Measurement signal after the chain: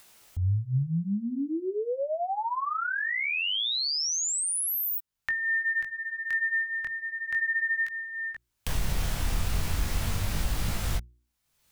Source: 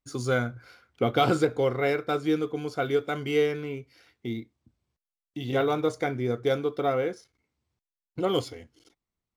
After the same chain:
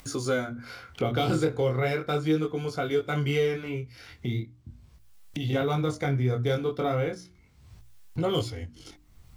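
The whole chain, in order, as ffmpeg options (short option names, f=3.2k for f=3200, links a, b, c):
-filter_complex "[0:a]bandreject=f=60:t=h:w=6,bandreject=f=120:t=h:w=6,bandreject=f=180:t=h:w=6,bandreject=f=240:t=h:w=6,bandreject=f=300:t=h:w=6,bandreject=f=360:t=h:w=6,asubboost=boost=4.5:cutoff=150,flanger=delay=18:depth=7.2:speed=0.37,acrossover=split=450|3000[a][b][c];[b]acompressor=threshold=-32dB:ratio=6[d];[a][d][c]amix=inputs=3:normalize=0,asplit=2[e][f];[f]alimiter=level_in=0.5dB:limit=-24dB:level=0:latency=1:release=204,volume=-0.5dB,volume=-1dB[g];[e][g]amix=inputs=2:normalize=0,acompressor=mode=upward:threshold=-29dB:ratio=2.5"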